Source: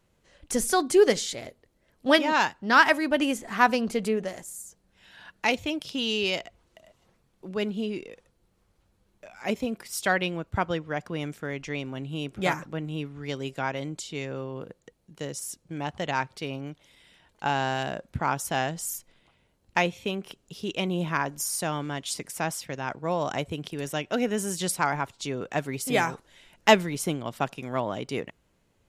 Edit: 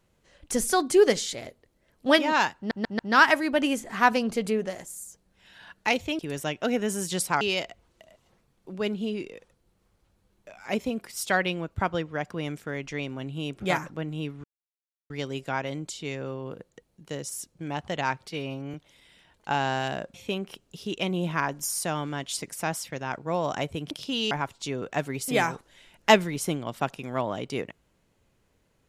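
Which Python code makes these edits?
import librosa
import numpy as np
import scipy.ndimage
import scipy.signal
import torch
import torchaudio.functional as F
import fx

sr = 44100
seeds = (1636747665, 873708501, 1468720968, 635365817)

y = fx.edit(x, sr, fx.stutter(start_s=2.57, slice_s=0.14, count=4),
    fx.swap(start_s=5.77, length_s=0.4, other_s=23.68, other_length_s=1.22),
    fx.insert_silence(at_s=13.2, length_s=0.66),
    fx.stretch_span(start_s=16.39, length_s=0.3, factor=1.5),
    fx.cut(start_s=18.09, length_s=1.82), tone=tone)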